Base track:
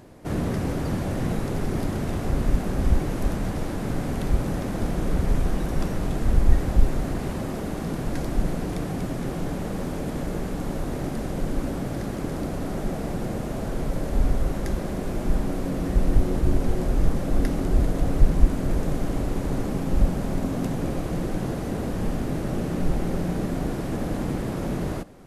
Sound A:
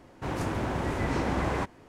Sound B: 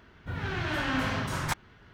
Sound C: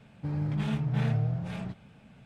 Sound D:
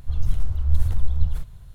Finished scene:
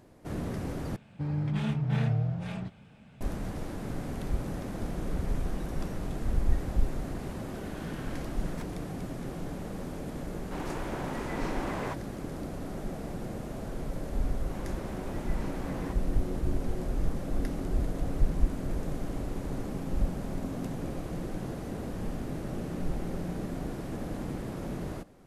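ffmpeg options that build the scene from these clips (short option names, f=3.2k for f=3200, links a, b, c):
-filter_complex "[1:a]asplit=2[a][b];[0:a]volume=-8.5dB[c];[a]highpass=220[d];[c]asplit=2[e][f];[e]atrim=end=0.964[g];[3:a]atrim=end=2.25[h];[f]atrim=start=3.206[i];[2:a]atrim=end=1.93,asetpts=PTS-STARTPTS,volume=-17.5dB,afade=t=in:d=0.004:c=hsin,afade=t=out:st=1.926:d=0.004:c=hsin,adelay=7090[j];[d]atrim=end=1.88,asetpts=PTS-STARTPTS,volume=-5dB,afade=t=in:d=0.004:c=hsin,afade=t=out:st=1.876:d=0.004:c=hsin,adelay=10290[k];[b]atrim=end=1.88,asetpts=PTS-STARTPTS,volume=-13dB,afade=t=in:d=0.004:c=hsin,afade=t=out:st=1.876:d=0.004:c=hsin,adelay=629748S[l];[g][h]acrossfade=d=0.004:c1=hsin:c2=hsin[m];[m][i]acrossfade=d=0.004:c1=hsin:c2=hsin[n];[n][j][k][l]amix=inputs=4:normalize=0"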